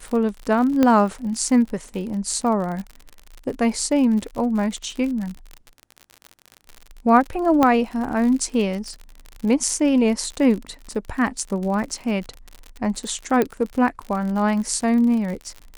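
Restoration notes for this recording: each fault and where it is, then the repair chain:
surface crackle 57 per second −28 dBFS
0:00.83: click −6 dBFS
0:07.63: click −5 dBFS
0:13.42: click −8 dBFS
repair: click removal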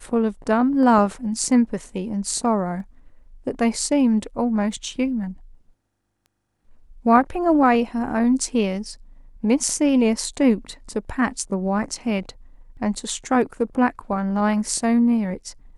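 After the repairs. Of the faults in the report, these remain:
0:00.83: click
0:13.42: click

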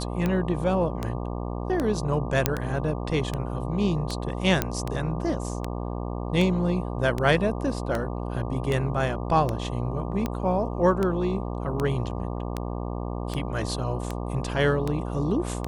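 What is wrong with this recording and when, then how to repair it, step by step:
mains buzz 60 Hz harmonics 20 −31 dBFS
scratch tick 78 rpm −14 dBFS
0:02.46: click −4 dBFS
0:04.62: click −7 dBFS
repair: click removal
hum removal 60 Hz, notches 20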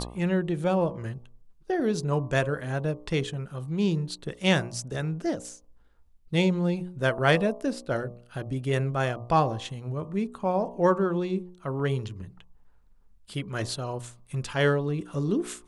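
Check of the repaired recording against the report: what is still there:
none of them is left

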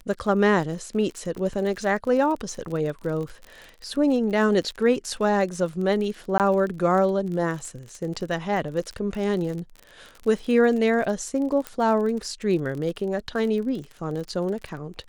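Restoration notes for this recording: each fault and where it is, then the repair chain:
surface crackle 39 per second −31 dBFS
0:06.38–0:06.40: drop-out 18 ms
0:11.67: click −15 dBFS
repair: click removal
repair the gap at 0:06.38, 18 ms

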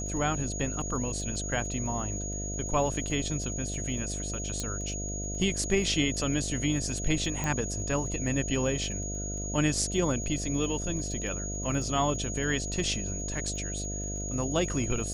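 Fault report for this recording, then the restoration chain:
mains buzz 50 Hz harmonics 14 −36 dBFS
surface crackle 25 per second −40 dBFS
whistle 6,700 Hz −36 dBFS
0:04.60: click −18 dBFS
0:07.44: click −18 dBFS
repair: click removal
hum removal 50 Hz, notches 14
notch filter 6,700 Hz, Q 30

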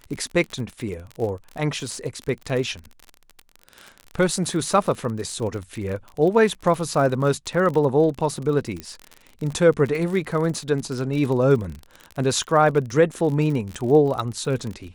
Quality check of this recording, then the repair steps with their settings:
surface crackle 43 per second −28 dBFS
0:08.80: click −17 dBFS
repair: click removal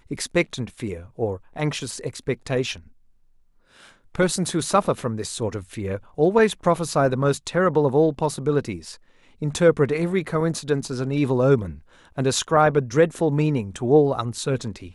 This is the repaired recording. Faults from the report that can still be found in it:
none of them is left

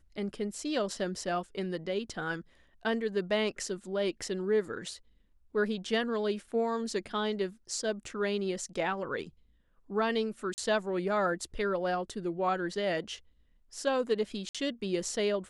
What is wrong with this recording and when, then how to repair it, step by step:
0:10.54–0:10.58: drop-out 39 ms
0:14.49–0:14.55: drop-out 56 ms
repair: repair the gap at 0:10.54, 39 ms
repair the gap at 0:14.49, 56 ms

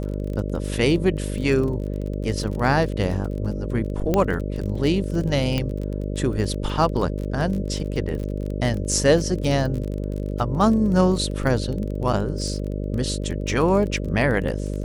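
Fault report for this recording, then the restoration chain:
mains buzz 50 Hz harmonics 12 −27 dBFS
surface crackle 27 per second −28 dBFS
0:04.14: click −8 dBFS
0:05.58: click −11 dBFS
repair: click removal
hum removal 50 Hz, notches 12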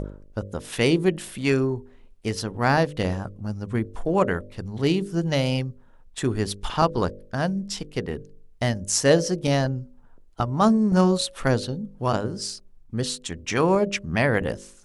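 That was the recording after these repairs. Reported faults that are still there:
0:05.58: click

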